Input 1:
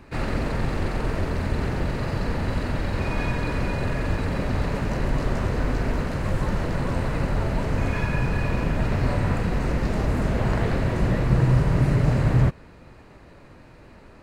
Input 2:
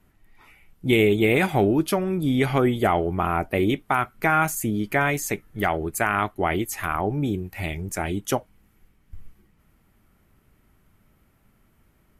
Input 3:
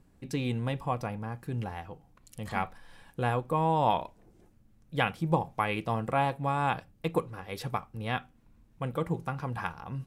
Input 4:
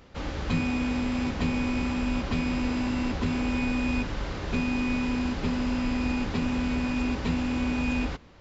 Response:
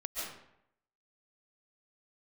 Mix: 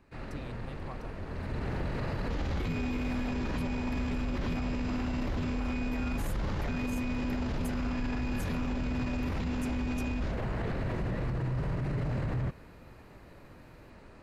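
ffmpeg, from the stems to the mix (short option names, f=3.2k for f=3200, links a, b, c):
-filter_complex "[0:a]acrossover=split=5100[a][b];[b]acompressor=threshold=-59dB:ratio=4:attack=1:release=60[c];[a][c]amix=inputs=2:normalize=0,volume=-4.5dB,afade=t=in:st=1.24:d=0.7:silence=0.298538[d];[1:a]acompressor=threshold=-33dB:ratio=2.5,adelay=1700,volume=-5dB[e];[2:a]volume=-14.5dB[f];[3:a]lowshelf=f=150:g=9,adelay=2150,volume=1dB[g];[d][e][f][g]amix=inputs=4:normalize=0,alimiter=level_in=1.5dB:limit=-24dB:level=0:latency=1:release=28,volume=-1.5dB"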